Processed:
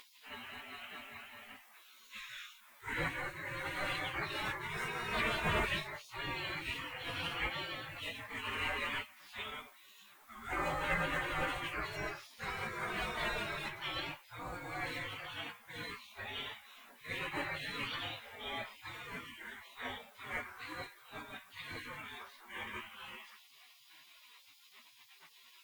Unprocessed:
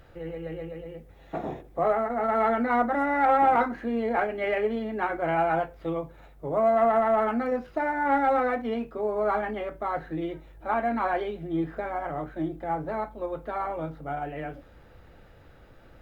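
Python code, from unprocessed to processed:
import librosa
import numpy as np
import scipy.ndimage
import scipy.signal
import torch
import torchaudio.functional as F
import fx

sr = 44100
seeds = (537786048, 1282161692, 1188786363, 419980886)

y = fx.spec_gate(x, sr, threshold_db=-30, keep='weak')
y = fx.stretch_vocoder_free(y, sr, factor=1.6)
y = y * 10.0 ** (14.0 / 20.0)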